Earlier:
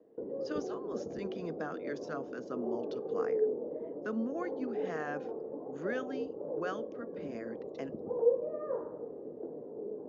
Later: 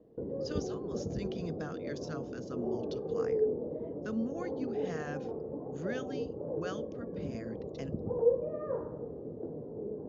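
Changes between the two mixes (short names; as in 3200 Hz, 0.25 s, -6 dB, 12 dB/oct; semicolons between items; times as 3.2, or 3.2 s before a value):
speech -5.0 dB; master: remove three-band isolator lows -19 dB, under 240 Hz, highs -12 dB, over 2200 Hz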